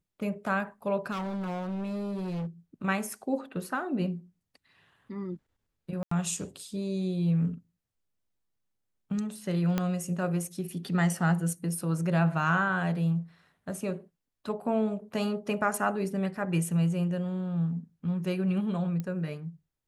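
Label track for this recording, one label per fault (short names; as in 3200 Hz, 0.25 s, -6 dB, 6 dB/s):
1.110000	2.470000	clipped -31 dBFS
6.030000	6.110000	gap 84 ms
9.780000	9.780000	pop -14 dBFS
19.000000	19.000000	pop -22 dBFS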